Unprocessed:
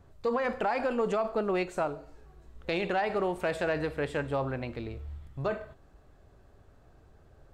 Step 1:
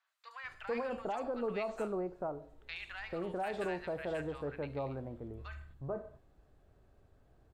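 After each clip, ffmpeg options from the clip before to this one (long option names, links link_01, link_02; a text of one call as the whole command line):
ffmpeg -i in.wav -filter_complex "[0:a]acrossover=split=1200|5900[link_01][link_02][link_03];[link_03]adelay=70[link_04];[link_01]adelay=440[link_05];[link_05][link_02][link_04]amix=inputs=3:normalize=0,volume=-7dB" out.wav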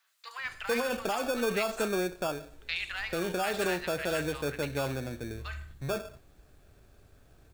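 ffmpeg -i in.wav -filter_complex "[0:a]highshelf=frequency=3400:gain=11,acrossover=split=110|790[link_01][link_02][link_03];[link_02]acrusher=samples=22:mix=1:aa=0.000001[link_04];[link_01][link_04][link_03]amix=inputs=3:normalize=0,volume=6.5dB" out.wav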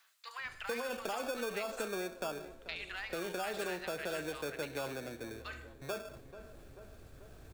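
ffmpeg -i in.wav -filter_complex "[0:a]acrossover=split=270|970[link_01][link_02][link_03];[link_01]acompressor=threshold=-51dB:ratio=4[link_04];[link_02]acompressor=threshold=-35dB:ratio=4[link_05];[link_03]acompressor=threshold=-37dB:ratio=4[link_06];[link_04][link_05][link_06]amix=inputs=3:normalize=0,asplit=2[link_07][link_08];[link_08]adelay=438,lowpass=frequency=1500:poles=1,volume=-14dB,asplit=2[link_09][link_10];[link_10]adelay=438,lowpass=frequency=1500:poles=1,volume=0.54,asplit=2[link_11][link_12];[link_12]adelay=438,lowpass=frequency=1500:poles=1,volume=0.54,asplit=2[link_13][link_14];[link_14]adelay=438,lowpass=frequency=1500:poles=1,volume=0.54,asplit=2[link_15][link_16];[link_16]adelay=438,lowpass=frequency=1500:poles=1,volume=0.54[link_17];[link_07][link_09][link_11][link_13][link_15][link_17]amix=inputs=6:normalize=0,areverse,acompressor=mode=upward:threshold=-41dB:ratio=2.5,areverse,volume=-3dB" out.wav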